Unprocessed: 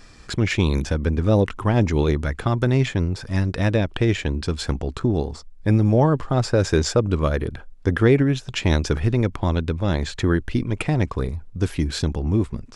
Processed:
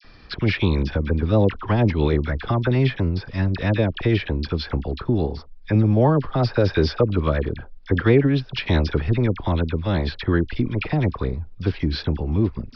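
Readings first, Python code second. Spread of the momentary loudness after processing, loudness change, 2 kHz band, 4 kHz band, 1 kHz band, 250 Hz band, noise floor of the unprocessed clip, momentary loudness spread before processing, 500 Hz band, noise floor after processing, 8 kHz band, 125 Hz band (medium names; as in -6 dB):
8 LU, 0.0 dB, 0.0 dB, -0.5 dB, 0.0 dB, 0.0 dB, -44 dBFS, 7 LU, 0.0 dB, -42 dBFS, under -20 dB, 0.0 dB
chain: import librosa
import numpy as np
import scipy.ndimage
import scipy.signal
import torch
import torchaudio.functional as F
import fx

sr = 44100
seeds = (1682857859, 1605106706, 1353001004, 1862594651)

y = scipy.signal.sosfilt(scipy.signal.butter(12, 5100.0, 'lowpass', fs=sr, output='sos'), x)
y = fx.dispersion(y, sr, late='lows', ms=47.0, hz=1400.0)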